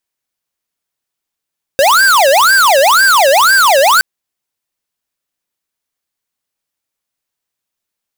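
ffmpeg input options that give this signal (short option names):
-f lavfi -i "aevalsrc='0.398*(2*lt(mod((1067*t-533/(2*PI*2)*sin(2*PI*2*t)),1),0.5)-1)':d=2.22:s=44100"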